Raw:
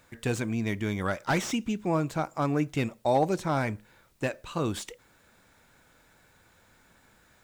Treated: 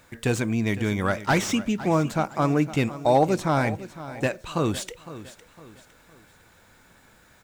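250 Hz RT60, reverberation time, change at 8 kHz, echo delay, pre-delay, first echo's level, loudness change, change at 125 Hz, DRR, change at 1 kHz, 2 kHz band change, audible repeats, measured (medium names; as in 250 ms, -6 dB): no reverb, no reverb, +5.0 dB, 508 ms, no reverb, -15.0 dB, +5.0 dB, +5.0 dB, no reverb, +5.0 dB, +5.0 dB, 3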